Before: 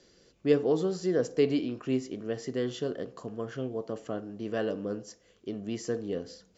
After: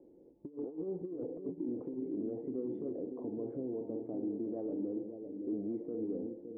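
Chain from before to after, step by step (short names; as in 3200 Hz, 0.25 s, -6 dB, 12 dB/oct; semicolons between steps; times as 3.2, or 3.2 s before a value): vocal tract filter u; bell 530 Hz +11 dB 1.2 oct; negative-ratio compressor -35 dBFS, ratio -0.5; limiter -34 dBFS, peak gain reduction 11 dB; on a send: dark delay 0.565 s, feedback 50%, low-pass 530 Hz, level -6 dB; on the sum: gain +3 dB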